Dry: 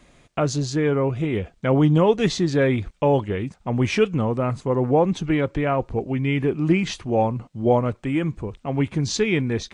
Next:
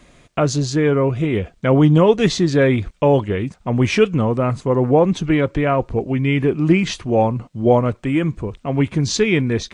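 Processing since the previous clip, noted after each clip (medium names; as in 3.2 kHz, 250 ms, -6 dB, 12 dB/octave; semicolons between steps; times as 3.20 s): band-stop 820 Hz, Q 14; trim +4.5 dB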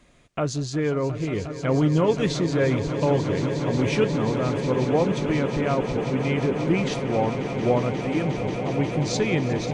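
echo with a slow build-up 179 ms, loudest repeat 8, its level -13 dB; trim -8 dB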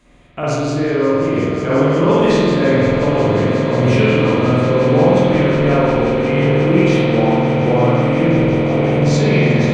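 spectral sustain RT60 0.39 s; spring tank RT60 2 s, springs 48 ms, chirp 60 ms, DRR -8 dB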